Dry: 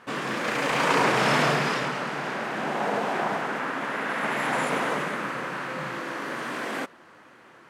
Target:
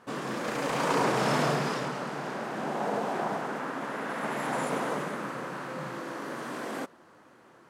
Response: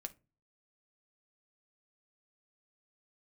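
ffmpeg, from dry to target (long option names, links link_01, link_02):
-af "equalizer=frequency=2300:width=0.79:gain=-8,volume=-2dB"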